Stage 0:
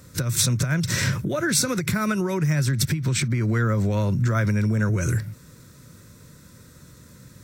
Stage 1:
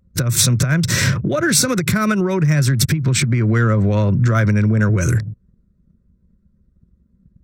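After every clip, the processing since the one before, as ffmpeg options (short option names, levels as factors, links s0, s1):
-af "acontrast=78,bandreject=f=890:w=12,anlmdn=251"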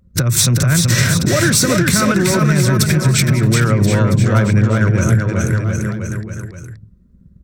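-filter_complex "[0:a]acontrast=49,asplit=2[s0][s1];[s1]aecho=0:1:380|722|1030|1307|1556:0.631|0.398|0.251|0.158|0.1[s2];[s0][s2]amix=inputs=2:normalize=0,acompressor=threshold=0.282:ratio=2,volume=0.891"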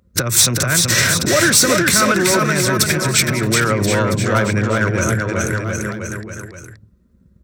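-filter_complex "[0:a]highpass=76,equalizer=f=140:t=o:w=1.6:g=-12,asplit=2[s0][s1];[s1]asoftclip=type=hard:threshold=0.178,volume=0.501[s2];[s0][s2]amix=inputs=2:normalize=0"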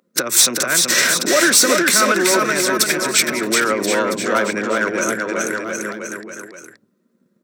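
-af "highpass=f=240:w=0.5412,highpass=f=240:w=1.3066"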